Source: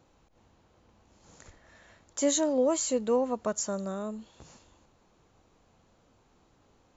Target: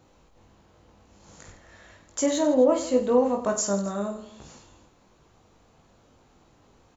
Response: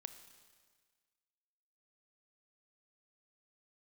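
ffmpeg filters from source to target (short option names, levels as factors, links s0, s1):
-filter_complex "[0:a]asettb=1/sr,asplit=3[s0][s1][s2];[s0]atrim=end=2.214[s3];[s1]atrim=start=2.21:end=3.18,asetpts=PTS-STARTPTS,afade=t=in:d=0.004:c=qsin,afade=t=out:st=0.966:d=0.004:c=qsin,adynamicsmooth=sensitivity=0.5:basefreq=3500[s4];[s2]atrim=start=3.176[s5];[s3][s4]acrossfade=d=0.004:c1=hsin:c2=qsin[s6];[s6][s5]acrossfade=d=0.004:c1=qsin:c2=hsin,asplit=2[s7][s8];[s8]aecho=0:1:20|50|95|162.5|263.8:0.631|0.398|0.251|0.158|0.1[s9];[s7][s9]amix=inputs=2:normalize=0,volume=1.5"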